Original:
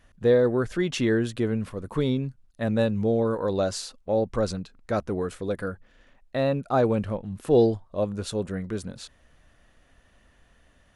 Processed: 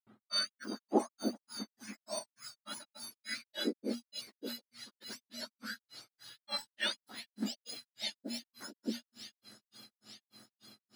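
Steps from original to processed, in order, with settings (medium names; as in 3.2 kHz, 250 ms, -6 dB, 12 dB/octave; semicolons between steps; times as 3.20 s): spectrum inverted on a logarithmic axis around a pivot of 1.5 kHz; tone controls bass +14 dB, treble -13 dB; de-hum 118.6 Hz, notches 2; on a send: feedback echo behind a high-pass 430 ms, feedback 84%, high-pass 2 kHz, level -12 dB; on the sum: granulator 209 ms, grains 3.4 per s, pitch spread up and down by 0 st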